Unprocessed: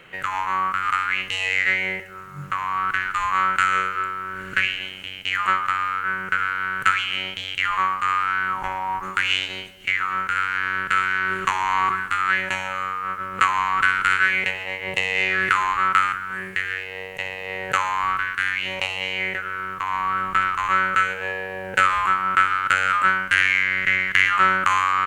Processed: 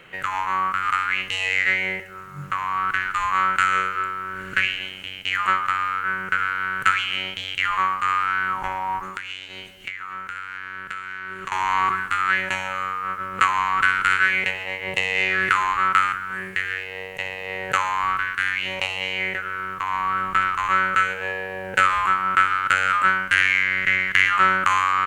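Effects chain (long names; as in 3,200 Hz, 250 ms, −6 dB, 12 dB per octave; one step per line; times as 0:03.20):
0:09.00–0:11.52: downward compressor 6 to 1, threshold −30 dBFS, peak gain reduction 14 dB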